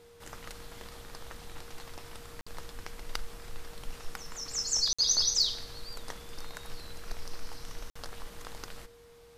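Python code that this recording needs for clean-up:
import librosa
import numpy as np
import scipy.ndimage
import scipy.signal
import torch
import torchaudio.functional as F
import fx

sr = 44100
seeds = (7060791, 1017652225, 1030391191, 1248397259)

y = fx.fix_declip(x, sr, threshold_db=-16.5)
y = fx.notch(y, sr, hz=470.0, q=30.0)
y = fx.fix_interpolate(y, sr, at_s=(2.41, 4.93, 7.9), length_ms=55.0)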